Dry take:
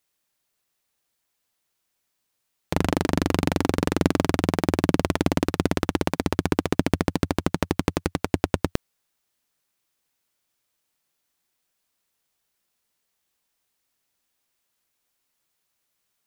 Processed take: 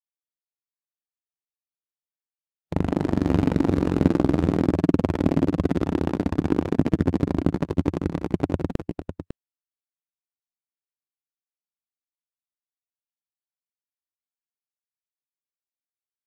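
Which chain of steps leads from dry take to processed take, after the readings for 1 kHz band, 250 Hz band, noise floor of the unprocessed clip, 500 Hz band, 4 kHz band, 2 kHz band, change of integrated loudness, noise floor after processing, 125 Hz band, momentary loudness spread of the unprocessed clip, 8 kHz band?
-4.0 dB, +2.5 dB, -77 dBFS, 0.0 dB, -10.5 dB, -7.5 dB, +1.5 dB, under -85 dBFS, +2.5 dB, 4 LU, under -10 dB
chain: multi-tap echo 62/157/264/552 ms -16/-10/-15/-5.5 dB; spectral contrast expander 1.5:1

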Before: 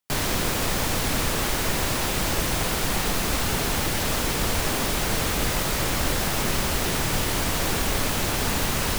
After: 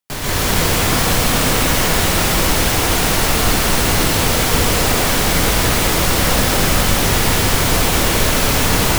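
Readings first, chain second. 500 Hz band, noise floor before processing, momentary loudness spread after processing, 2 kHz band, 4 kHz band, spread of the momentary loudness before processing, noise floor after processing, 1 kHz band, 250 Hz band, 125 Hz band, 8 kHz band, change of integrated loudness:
+9.5 dB, -26 dBFS, 0 LU, +9.5 dB, +9.5 dB, 0 LU, -17 dBFS, +9.5 dB, +9.0 dB, +9.5 dB, +9.5 dB, +9.5 dB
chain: plate-style reverb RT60 2.8 s, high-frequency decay 1×, pre-delay 110 ms, DRR -9 dB

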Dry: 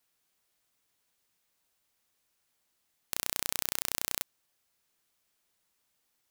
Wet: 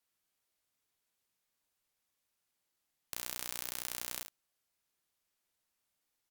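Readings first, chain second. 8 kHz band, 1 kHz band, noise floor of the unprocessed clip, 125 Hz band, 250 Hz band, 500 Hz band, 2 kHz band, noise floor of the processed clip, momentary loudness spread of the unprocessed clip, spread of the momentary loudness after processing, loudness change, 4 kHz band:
-6.5 dB, -6.5 dB, -77 dBFS, -7.0 dB, -6.5 dB, -6.5 dB, -6.5 dB, -84 dBFS, 6 LU, 6 LU, -6.5 dB, -6.5 dB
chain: early reflections 14 ms -14.5 dB, 50 ms -8.5 dB, 71 ms -13.5 dB; trim -7.5 dB; Vorbis 192 kbps 44.1 kHz

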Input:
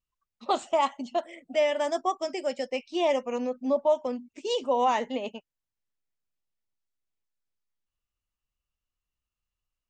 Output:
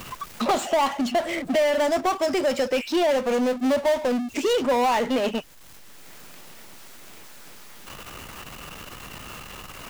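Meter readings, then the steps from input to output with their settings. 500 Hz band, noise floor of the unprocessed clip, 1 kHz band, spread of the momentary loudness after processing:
+5.0 dB, under -85 dBFS, +3.5 dB, 17 LU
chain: power-law waveshaper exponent 0.5; three bands compressed up and down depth 70%

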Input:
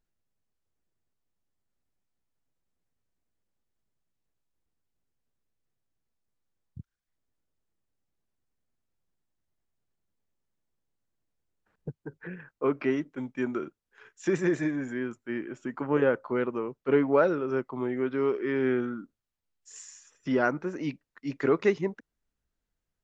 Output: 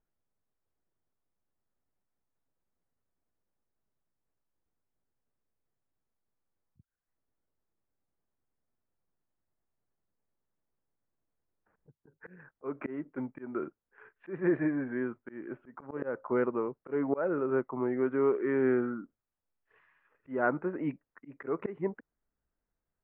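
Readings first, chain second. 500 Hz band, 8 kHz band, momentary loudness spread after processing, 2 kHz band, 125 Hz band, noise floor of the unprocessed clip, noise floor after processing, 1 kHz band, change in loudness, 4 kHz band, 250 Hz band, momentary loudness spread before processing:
-4.0 dB, no reading, 15 LU, -5.5 dB, -5.5 dB, under -85 dBFS, under -85 dBFS, -4.0 dB, -3.5 dB, under -20 dB, -3.5 dB, 17 LU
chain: Bessel low-pass 1.3 kHz, order 8; bass shelf 330 Hz -6.5 dB; slow attack 241 ms; trim +3 dB

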